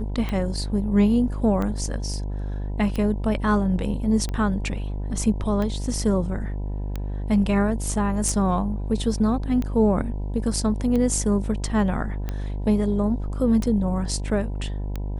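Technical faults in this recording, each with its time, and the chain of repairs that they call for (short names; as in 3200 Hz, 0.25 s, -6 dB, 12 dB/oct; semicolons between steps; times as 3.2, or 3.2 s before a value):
buzz 50 Hz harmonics 20 -28 dBFS
tick 45 rpm -16 dBFS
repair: de-click; de-hum 50 Hz, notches 20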